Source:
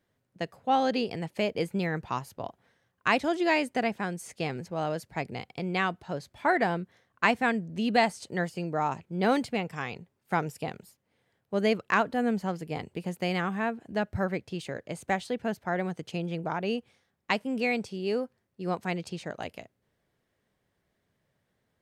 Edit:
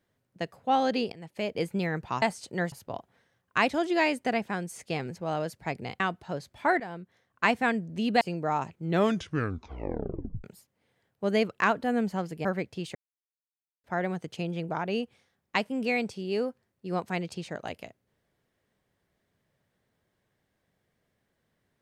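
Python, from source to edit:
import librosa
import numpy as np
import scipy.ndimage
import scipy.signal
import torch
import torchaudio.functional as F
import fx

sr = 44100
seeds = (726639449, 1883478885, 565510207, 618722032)

y = fx.edit(x, sr, fx.fade_in_from(start_s=1.12, length_s=0.51, floor_db=-16.5),
    fx.cut(start_s=5.5, length_s=0.3),
    fx.fade_in_from(start_s=6.6, length_s=0.72, floor_db=-15.0),
    fx.move(start_s=8.01, length_s=0.5, to_s=2.22),
    fx.tape_stop(start_s=9.04, length_s=1.7),
    fx.cut(start_s=12.75, length_s=1.45),
    fx.silence(start_s=14.7, length_s=0.89), tone=tone)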